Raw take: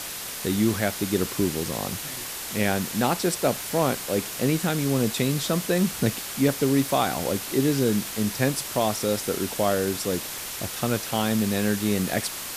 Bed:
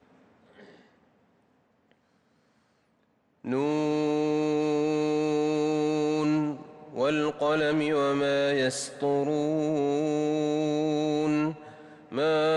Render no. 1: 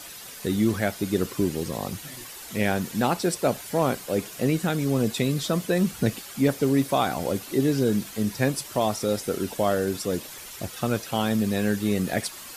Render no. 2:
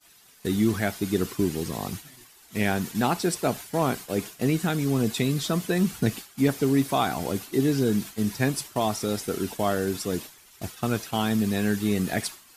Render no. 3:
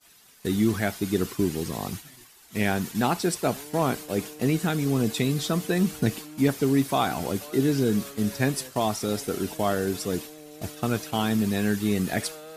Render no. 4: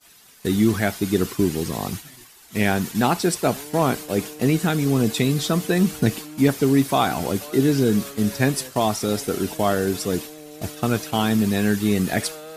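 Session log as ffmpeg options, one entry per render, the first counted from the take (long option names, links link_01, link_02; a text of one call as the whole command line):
ffmpeg -i in.wav -af "afftdn=noise_reduction=10:noise_floor=-35" out.wav
ffmpeg -i in.wav -af "agate=range=-33dB:threshold=-31dB:ratio=3:detection=peak,equalizer=frequency=540:width_type=o:width=0.23:gain=-9.5" out.wav
ffmpeg -i in.wav -i bed.wav -filter_complex "[1:a]volume=-19dB[link_01];[0:a][link_01]amix=inputs=2:normalize=0" out.wav
ffmpeg -i in.wav -af "volume=4.5dB" out.wav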